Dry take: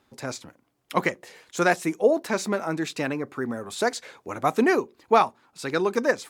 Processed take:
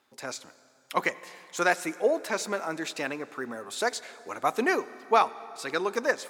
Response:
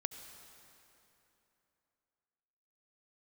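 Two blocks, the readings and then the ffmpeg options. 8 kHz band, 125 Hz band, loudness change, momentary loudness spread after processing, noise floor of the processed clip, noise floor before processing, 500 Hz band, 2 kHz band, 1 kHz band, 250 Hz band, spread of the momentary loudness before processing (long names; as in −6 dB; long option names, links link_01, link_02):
−1.0 dB, −12.5 dB, −4.0 dB, 13 LU, −62 dBFS, −68 dBFS, −4.5 dB, −1.5 dB, −2.5 dB, −8.0 dB, 15 LU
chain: -filter_complex "[0:a]highpass=frequency=590:poles=1,asplit=2[link_01][link_02];[1:a]atrim=start_sample=2205[link_03];[link_02][link_03]afir=irnorm=-1:irlink=0,volume=-6dB[link_04];[link_01][link_04]amix=inputs=2:normalize=0,volume=-4dB"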